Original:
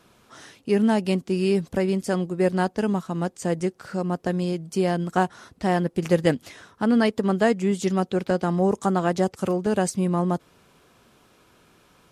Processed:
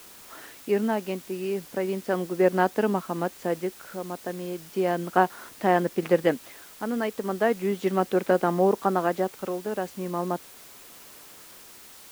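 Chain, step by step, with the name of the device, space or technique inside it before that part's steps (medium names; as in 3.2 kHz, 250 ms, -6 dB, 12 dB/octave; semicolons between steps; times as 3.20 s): shortwave radio (band-pass 280–2600 Hz; tremolo 0.36 Hz, depth 62%; white noise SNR 21 dB); trim +3 dB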